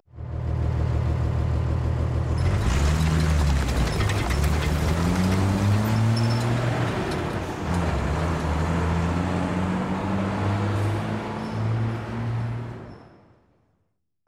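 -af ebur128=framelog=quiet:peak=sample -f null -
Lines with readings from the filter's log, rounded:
Integrated loudness:
  I:         -24.6 LUFS
  Threshold: -35.0 LUFS
Loudness range:
  LRA:         4.8 LU
  Threshold: -44.5 LUFS
  LRA low:   -27.7 LUFS
  LRA high:  -22.9 LUFS
Sample peak:
  Peak:      -11.5 dBFS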